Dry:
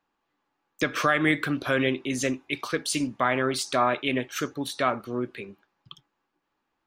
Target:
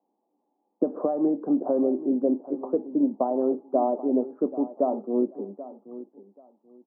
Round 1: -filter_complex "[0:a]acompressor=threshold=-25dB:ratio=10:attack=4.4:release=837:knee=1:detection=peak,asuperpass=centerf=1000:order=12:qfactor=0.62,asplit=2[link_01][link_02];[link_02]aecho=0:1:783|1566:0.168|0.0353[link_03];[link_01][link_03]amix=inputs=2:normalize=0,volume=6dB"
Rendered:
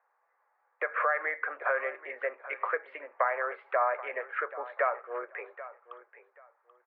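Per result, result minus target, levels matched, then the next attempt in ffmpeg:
1,000 Hz band +7.0 dB; downward compressor: peak gain reduction +6 dB
-filter_complex "[0:a]acompressor=threshold=-25dB:ratio=10:attack=4.4:release=837:knee=1:detection=peak,asuperpass=centerf=410:order=12:qfactor=0.62,asplit=2[link_01][link_02];[link_02]aecho=0:1:783|1566:0.168|0.0353[link_03];[link_01][link_03]amix=inputs=2:normalize=0,volume=6dB"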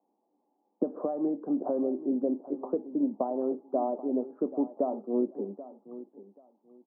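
downward compressor: peak gain reduction +6 dB
-filter_complex "[0:a]acompressor=threshold=-18.5dB:ratio=10:attack=4.4:release=837:knee=1:detection=peak,asuperpass=centerf=410:order=12:qfactor=0.62,asplit=2[link_01][link_02];[link_02]aecho=0:1:783|1566:0.168|0.0353[link_03];[link_01][link_03]amix=inputs=2:normalize=0,volume=6dB"

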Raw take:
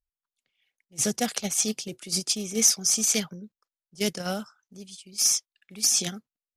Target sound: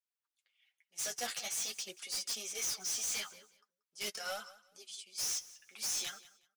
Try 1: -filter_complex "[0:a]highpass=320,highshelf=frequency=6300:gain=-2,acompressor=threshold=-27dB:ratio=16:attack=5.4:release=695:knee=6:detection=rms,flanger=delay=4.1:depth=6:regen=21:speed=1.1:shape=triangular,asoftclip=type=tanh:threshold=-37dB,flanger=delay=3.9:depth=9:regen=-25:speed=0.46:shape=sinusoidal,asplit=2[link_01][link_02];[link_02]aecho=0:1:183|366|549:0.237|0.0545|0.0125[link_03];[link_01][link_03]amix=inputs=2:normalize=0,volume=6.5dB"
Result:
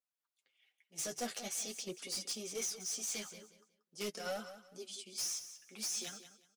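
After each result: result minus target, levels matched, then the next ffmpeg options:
downward compressor: peak gain reduction +15 dB; 250 Hz band +13.0 dB; echo-to-direct +6.5 dB
-filter_complex "[0:a]highpass=320,highshelf=frequency=6300:gain=-2,flanger=delay=4.1:depth=6:regen=21:speed=1.1:shape=triangular,asoftclip=type=tanh:threshold=-37dB,flanger=delay=3.9:depth=9:regen=-25:speed=0.46:shape=sinusoidal,asplit=2[link_01][link_02];[link_02]aecho=0:1:183|366|549:0.237|0.0545|0.0125[link_03];[link_01][link_03]amix=inputs=2:normalize=0,volume=6.5dB"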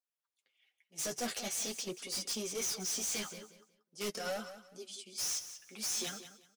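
250 Hz band +14.0 dB; echo-to-direct +6.5 dB
-filter_complex "[0:a]highpass=950,highshelf=frequency=6300:gain=-2,flanger=delay=4.1:depth=6:regen=21:speed=1.1:shape=triangular,asoftclip=type=tanh:threshold=-37dB,flanger=delay=3.9:depth=9:regen=-25:speed=0.46:shape=sinusoidal,asplit=2[link_01][link_02];[link_02]aecho=0:1:183|366|549:0.237|0.0545|0.0125[link_03];[link_01][link_03]amix=inputs=2:normalize=0,volume=6.5dB"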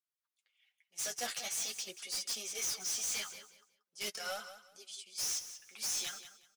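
echo-to-direct +6.5 dB
-filter_complex "[0:a]highpass=950,highshelf=frequency=6300:gain=-2,flanger=delay=4.1:depth=6:regen=21:speed=1.1:shape=triangular,asoftclip=type=tanh:threshold=-37dB,flanger=delay=3.9:depth=9:regen=-25:speed=0.46:shape=sinusoidal,asplit=2[link_01][link_02];[link_02]aecho=0:1:183|366:0.112|0.0258[link_03];[link_01][link_03]amix=inputs=2:normalize=0,volume=6.5dB"

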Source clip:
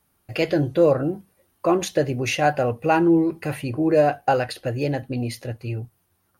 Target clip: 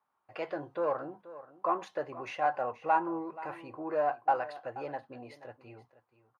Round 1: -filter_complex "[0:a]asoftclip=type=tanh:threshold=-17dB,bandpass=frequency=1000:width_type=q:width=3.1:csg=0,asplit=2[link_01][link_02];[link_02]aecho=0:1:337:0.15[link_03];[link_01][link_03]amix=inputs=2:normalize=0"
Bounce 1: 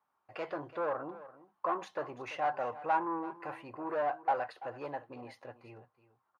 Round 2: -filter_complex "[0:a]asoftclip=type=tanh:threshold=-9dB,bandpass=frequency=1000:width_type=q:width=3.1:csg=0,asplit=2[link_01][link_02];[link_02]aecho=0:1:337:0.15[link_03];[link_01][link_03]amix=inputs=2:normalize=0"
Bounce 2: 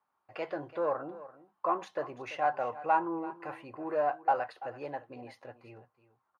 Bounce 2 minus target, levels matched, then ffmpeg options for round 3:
echo 143 ms early
-filter_complex "[0:a]asoftclip=type=tanh:threshold=-9dB,bandpass=frequency=1000:width_type=q:width=3.1:csg=0,asplit=2[link_01][link_02];[link_02]aecho=0:1:480:0.15[link_03];[link_01][link_03]amix=inputs=2:normalize=0"

